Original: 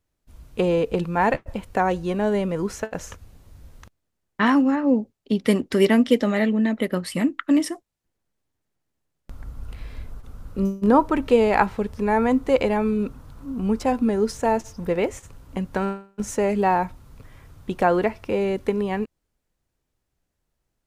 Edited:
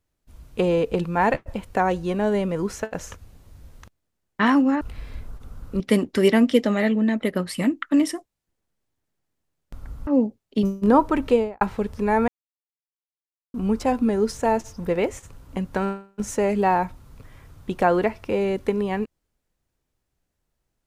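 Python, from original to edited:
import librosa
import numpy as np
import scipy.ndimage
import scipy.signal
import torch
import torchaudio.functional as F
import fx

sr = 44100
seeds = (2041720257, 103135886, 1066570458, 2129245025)

y = fx.studio_fade_out(x, sr, start_s=11.26, length_s=0.35)
y = fx.edit(y, sr, fx.swap(start_s=4.81, length_s=0.56, other_s=9.64, other_length_s=0.99),
    fx.silence(start_s=12.28, length_s=1.26), tone=tone)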